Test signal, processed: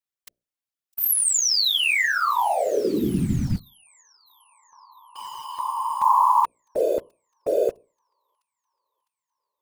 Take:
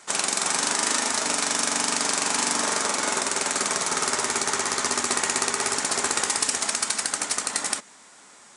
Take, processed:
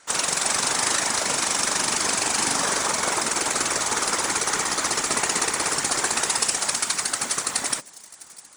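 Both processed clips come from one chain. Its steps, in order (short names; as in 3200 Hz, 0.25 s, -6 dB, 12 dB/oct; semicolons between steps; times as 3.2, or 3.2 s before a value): notches 60/120/180/240/300/360/420/480/540/600 Hz; thin delay 0.656 s, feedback 60%, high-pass 4500 Hz, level -18 dB; in parallel at -4 dB: bit-crush 6-bit; on the sum: whisperiser; gain -3 dB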